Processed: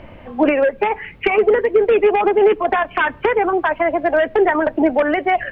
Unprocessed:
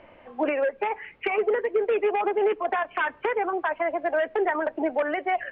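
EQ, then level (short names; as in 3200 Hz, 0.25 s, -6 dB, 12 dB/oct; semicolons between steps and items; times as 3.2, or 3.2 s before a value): tone controls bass +14 dB, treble +8 dB; +8.0 dB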